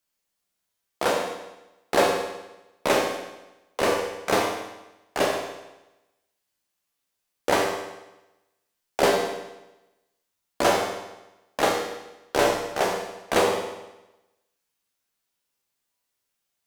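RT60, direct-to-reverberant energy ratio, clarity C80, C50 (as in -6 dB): 1.0 s, 0.5 dB, 6.5 dB, 4.0 dB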